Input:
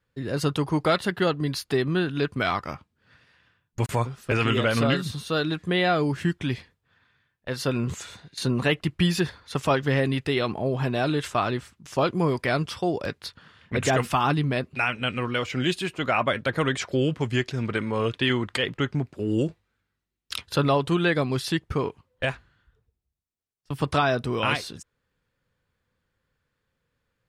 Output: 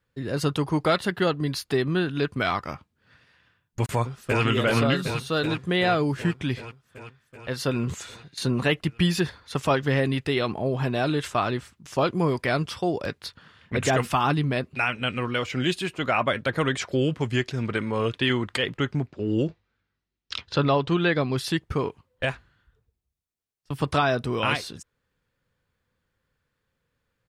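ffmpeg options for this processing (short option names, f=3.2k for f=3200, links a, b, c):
-filter_complex "[0:a]asplit=2[a][b];[b]afade=t=in:st=3.91:d=0.01,afade=t=out:st=4.43:d=0.01,aecho=0:1:380|760|1140|1520|1900|2280|2660|3040|3420|3800|4180|4560:0.562341|0.421756|0.316317|0.237238|0.177928|0.133446|0.100085|0.0750635|0.0562976|0.0422232|0.0316674|0.0237506[c];[a][c]amix=inputs=2:normalize=0,asplit=3[d][e][f];[d]afade=t=out:st=19.06:d=0.02[g];[e]lowpass=f=5.9k:w=0.5412,lowpass=f=5.9k:w=1.3066,afade=t=in:st=19.06:d=0.02,afade=t=out:st=21.36:d=0.02[h];[f]afade=t=in:st=21.36:d=0.02[i];[g][h][i]amix=inputs=3:normalize=0"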